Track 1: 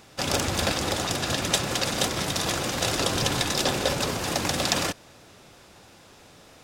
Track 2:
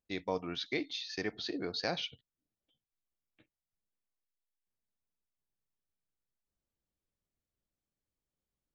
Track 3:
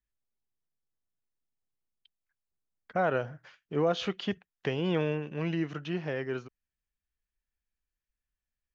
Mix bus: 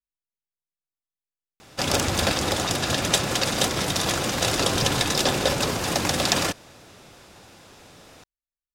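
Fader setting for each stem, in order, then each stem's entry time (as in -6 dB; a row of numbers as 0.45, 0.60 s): +2.5 dB, off, -12.0 dB; 1.60 s, off, 0.00 s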